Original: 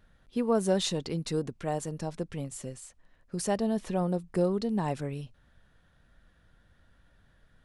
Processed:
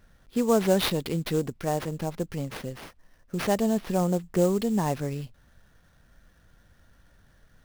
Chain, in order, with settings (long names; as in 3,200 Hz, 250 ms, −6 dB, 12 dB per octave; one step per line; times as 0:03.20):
sample-rate reduction 7,600 Hz, jitter 20%
level +4 dB